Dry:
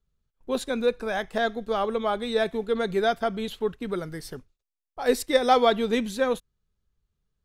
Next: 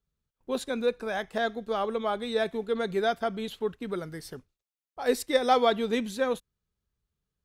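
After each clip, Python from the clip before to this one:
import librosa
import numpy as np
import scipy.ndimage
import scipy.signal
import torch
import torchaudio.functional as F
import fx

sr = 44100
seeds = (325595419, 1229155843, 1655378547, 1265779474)

y = fx.highpass(x, sr, hz=61.0, slope=6)
y = y * 10.0 ** (-3.0 / 20.0)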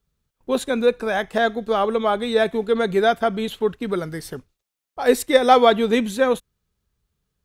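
y = fx.dynamic_eq(x, sr, hz=4900.0, q=2.5, threshold_db=-53.0, ratio=4.0, max_db=-6)
y = y * 10.0 ** (9.0 / 20.0)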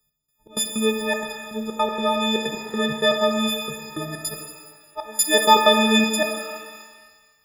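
y = fx.freq_snap(x, sr, grid_st=6)
y = fx.step_gate(y, sr, bpm=159, pattern='x..xx.x.xxxx.', floor_db=-24.0, edge_ms=4.5)
y = fx.rev_shimmer(y, sr, seeds[0], rt60_s=1.4, semitones=12, shimmer_db=-8, drr_db=3.5)
y = y * 10.0 ** (-3.0 / 20.0)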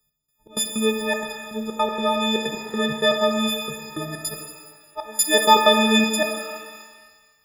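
y = x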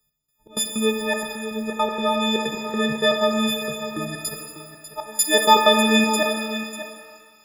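y = x + 10.0 ** (-12.0 / 20.0) * np.pad(x, (int(595 * sr / 1000.0), 0))[:len(x)]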